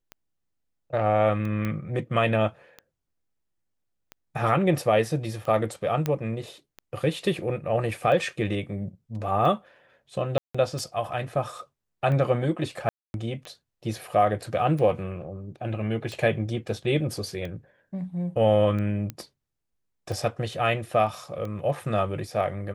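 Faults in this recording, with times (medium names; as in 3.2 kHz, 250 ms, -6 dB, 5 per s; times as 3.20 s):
tick 45 rpm -23 dBFS
1.65 s: pop -17 dBFS
6.06 s: pop -13 dBFS
10.38–10.54 s: dropout 165 ms
12.89–13.14 s: dropout 251 ms
19.10 s: pop -18 dBFS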